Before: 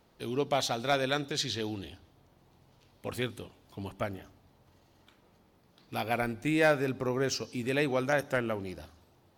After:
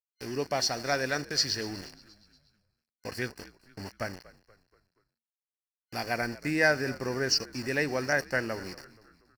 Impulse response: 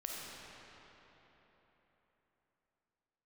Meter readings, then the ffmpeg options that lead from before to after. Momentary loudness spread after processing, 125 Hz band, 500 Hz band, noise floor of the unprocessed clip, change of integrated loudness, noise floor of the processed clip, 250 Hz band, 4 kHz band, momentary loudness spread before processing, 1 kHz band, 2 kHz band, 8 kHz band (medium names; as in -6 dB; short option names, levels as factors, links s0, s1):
19 LU, -2.0 dB, -1.5 dB, -65 dBFS, +1.5 dB, under -85 dBFS, -1.5 dB, +4.5 dB, 17 LU, -1.5 dB, +4.5 dB, +5.5 dB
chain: -filter_complex "[0:a]aeval=exprs='val(0)*gte(abs(val(0)),0.01)':c=same,superequalizer=11b=2.24:13b=0.316:14b=3.98,asplit=5[s0][s1][s2][s3][s4];[s1]adelay=238,afreqshift=-58,volume=0.1[s5];[s2]adelay=476,afreqshift=-116,volume=0.049[s6];[s3]adelay=714,afreqshift=-174,volume=0.024[s7];[s4]adelay=952,afreqshift=-232,volume=0.0117[s8];[s0][s5][s6][s7][s8]amix=inputs=5:normalize=0,volume=0.841"